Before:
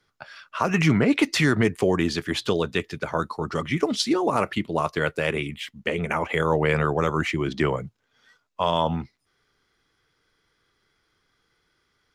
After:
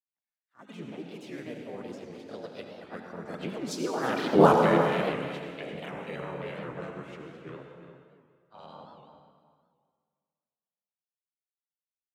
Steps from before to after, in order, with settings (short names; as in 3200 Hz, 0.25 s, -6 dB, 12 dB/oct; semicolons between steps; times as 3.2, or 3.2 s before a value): Doppler pass-by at 4.45, 24 m/s, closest 1.3 m; expander -54 dBFS; HPF 160 Hz 12 dB/oct; low shelf 410 Hz +7 dB; in parallel at +1.5 dB: compressor, threshold -48 dBFS, peak gain reduction 27.5 dB; on the sum: grains, spray 26 ms, pitch spread up and down by 0 st; harmoniser +4 st -1 dB, +7 st -12 dB; outdoor echo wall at 60 m, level -10 dB; on a send at -3 dB: reverb RT60 1.9 s, pre-delay 68 ms; on the sum: record warp 78 rpm, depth 160 cents; gain +4 dB